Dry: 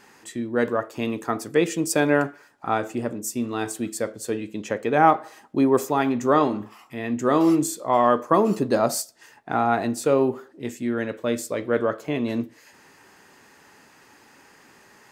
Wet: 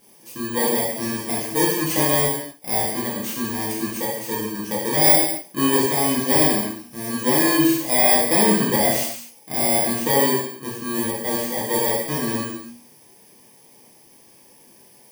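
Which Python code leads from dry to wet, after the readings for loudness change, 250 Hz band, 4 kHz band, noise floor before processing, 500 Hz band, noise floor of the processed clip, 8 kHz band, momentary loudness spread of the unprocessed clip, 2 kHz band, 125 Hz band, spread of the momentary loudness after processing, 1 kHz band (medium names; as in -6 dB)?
+4.0 dB, +0.5 dB, +12.0 dB, -54 dBFS, -0.5 dB, -51 dBFS, +10.0 dB, 11 LU, +4.0 dB, +3.0 dB, 12 LU, -1.5 dB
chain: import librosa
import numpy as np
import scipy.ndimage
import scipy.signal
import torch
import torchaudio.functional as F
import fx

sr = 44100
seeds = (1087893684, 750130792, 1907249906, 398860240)

y = fx.bit_reversed(x, sr, seeds[0], block=32)
y = fx.hum_notches(y, sr, base_hz=60, count=4)
y = fx.rev_gated(y, sr, seeds[1], gate_ms=310, shape='falling', drr_db=-7.0)
y = F.gain(torch.from_numpy(y), -5.0).numpy()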